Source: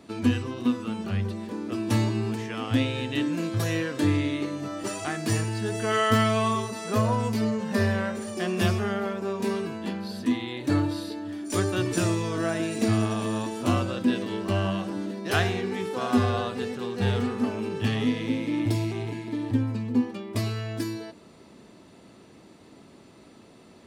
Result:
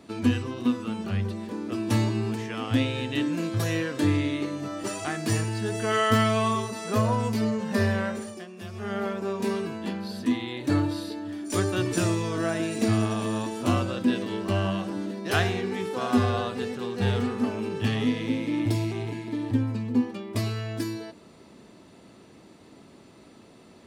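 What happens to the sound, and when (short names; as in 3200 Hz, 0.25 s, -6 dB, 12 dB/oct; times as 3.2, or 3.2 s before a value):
8.17–9.01 dip -16 dB, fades 0.29 s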